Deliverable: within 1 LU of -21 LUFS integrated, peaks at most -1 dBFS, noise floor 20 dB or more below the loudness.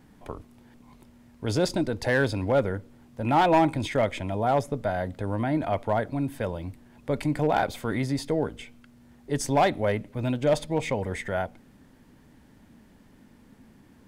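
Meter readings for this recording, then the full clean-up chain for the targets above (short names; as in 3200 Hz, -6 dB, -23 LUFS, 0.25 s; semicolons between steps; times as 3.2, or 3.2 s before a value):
clipped 0.3%; flat tops at -14.5 dBFS; loudness -27.0 LUFS; peak -14.5 dBFS; loudness target -21.0 LUFS
-> clip repair -14.5 dBFS; gain +6 dB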